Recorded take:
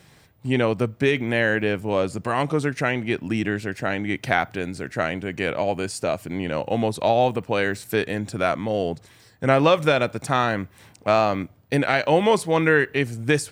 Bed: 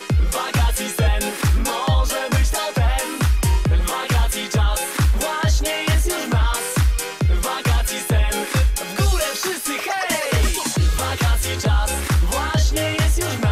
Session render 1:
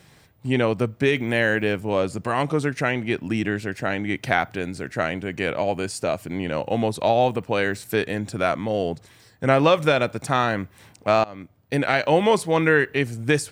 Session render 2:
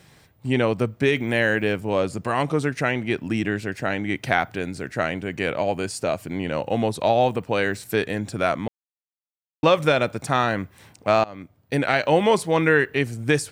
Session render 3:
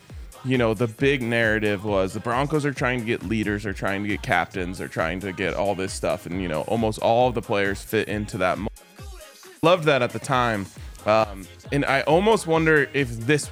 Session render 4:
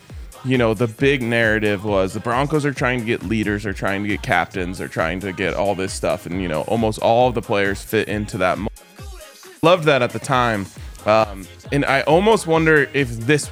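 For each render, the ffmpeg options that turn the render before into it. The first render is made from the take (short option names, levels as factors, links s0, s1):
-filter_complex "[0:a]asettb=1/sr,asplit=3[s0][s1][s2];[s0]atrim=end=1.124[s3];[s1]atrim=start=1.12:end=1.76,asetpts=PTS-STARTPTS,afade=t=in:d=0.004:c=qsin,afade=t=out:st=0.636:d=0.004:c=qsin,highshelf=f=6800:g=6.5[s4];[s2]atrim=start=1.756[s5];[s3][s4]acrossfade=d=0.004:c1=hsin:c2=qsin[s6];[s6][s5]acrossfade=d=0.004:c1=qsin:c2=hsin,asplit=2[s7][s8];[s7]atrim=end=11.24,asetpts=PTS-STARTPTS,afade=t=out:st=11.236:d=0.004:c=hsin:silence=0.0707946[s9];[s8]atrim=start=11.24,asetpts=PTS-STARTPTS,afade=t=in:d=0.65:silence=0.0707946[s10];[s9][s10]concat=n=2:v=0:a=1"
-filter_complex "[0:a]asplit=3[s0][s1][s2];[s0]atrim=end=8.68,asetpts=PTS-STARTPTS,afade=t=out:st=8.676:d=0.004:c=hsin[s3];[s1]atrim=start=8.68:end=9.63,asetpts=PTS-STARTPTS,volume=0[s4];[s2]atrim=start=9.63,asetpts=PTS-STARTPTS,afade=t=in:d=0.004:c=hsin[s5];[s3][s4][s5]concat=n=3:v=0:a=1"
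-filter_complex "[1:a]volume=0.0794[s0];[0:a][s0]amix=inputs=2:normalize=0"
-af "volume=1.58,alimiter=limit=0.891:level=0:latency=1"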